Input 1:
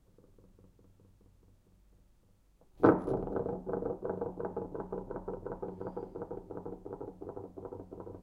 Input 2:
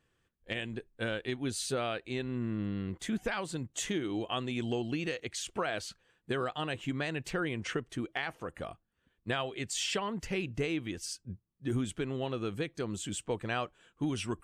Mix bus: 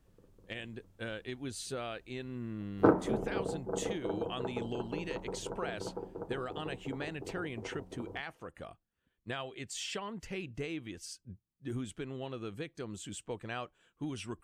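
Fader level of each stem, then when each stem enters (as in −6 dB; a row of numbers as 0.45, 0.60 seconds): −0.5, −6.0 decibels; 0.00, 0.00 seconds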